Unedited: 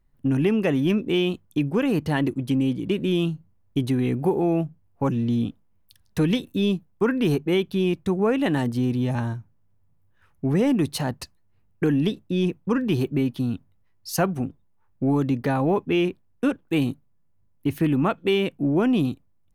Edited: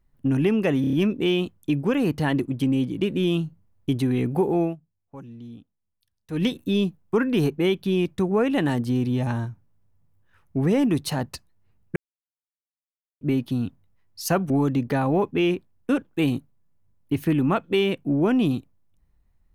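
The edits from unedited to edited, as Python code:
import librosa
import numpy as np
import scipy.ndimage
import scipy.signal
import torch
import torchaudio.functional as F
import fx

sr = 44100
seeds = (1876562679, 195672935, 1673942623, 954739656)

y = fx.edit(x, sr, fx.stutter(start_s=0.81, slice_s=0.03, count=5),
    fx.fade_down_up(start_s=4.5, length_s=1.82, db=-17.5, fade_s=0.14),
    fx.silence(start_s=11.84, length_s=1.25),
    fx.cut(start_s=14.38, length_s=0.66), tone=tone)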